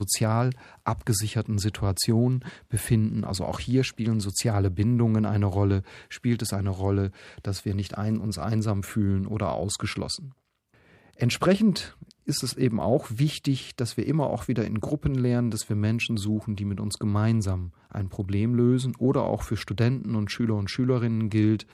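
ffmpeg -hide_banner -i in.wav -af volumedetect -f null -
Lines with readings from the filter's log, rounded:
mean_volume: -25.6 dB
max_volume: -9.5 dB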